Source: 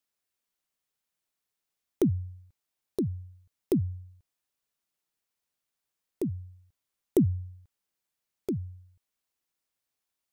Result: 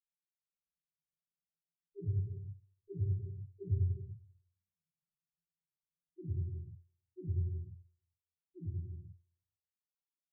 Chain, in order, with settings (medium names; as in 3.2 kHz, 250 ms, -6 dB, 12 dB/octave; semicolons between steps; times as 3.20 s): Doppler pass-by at 3.73 s, 16 m/s, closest 8.2 m; resonant low shelf 210 Hz +6.5 dB, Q 3; waveshaping leveller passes 2; compression 16:1, threshold -47 dBFS, peak gain reduction 33.5 dB; touch-sensitive flanger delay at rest 4.7 ms, full sweep at -35.5 dBFS; loudest bins only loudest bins 1; feedback delay 110 ms, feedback 46%, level -18 dB; reverb removal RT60 0.71 s; reverberation, pre-delay 46 ms; trim +4 dB